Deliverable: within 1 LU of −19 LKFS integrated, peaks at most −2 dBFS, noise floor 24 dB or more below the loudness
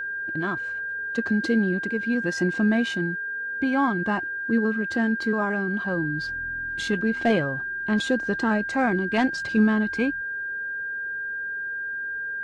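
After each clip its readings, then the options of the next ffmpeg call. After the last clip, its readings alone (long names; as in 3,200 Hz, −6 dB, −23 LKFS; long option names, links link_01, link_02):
interfering tone 1,600 Hz; level of the tone −28 dBFS; integrated loudness −25.0 LKFS; sample peak −10.5 dBFS; target loudness −19.0 LKFS
→ -af "bandreject=frequency=1600:width=30"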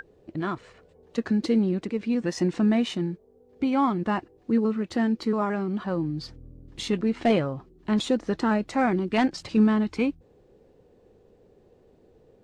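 interfering tone none found; integrated loudness −26.0 LKFS; sample peak −11.5 dBFS; target loudness −19.0 LKFS
→ -af "volume=7dB"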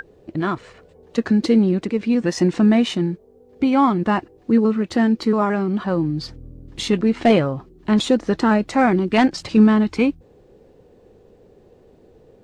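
integrated loudness −19.0 LKFS; sample peak −4.5 dBFS; background noise floor −52 dBFS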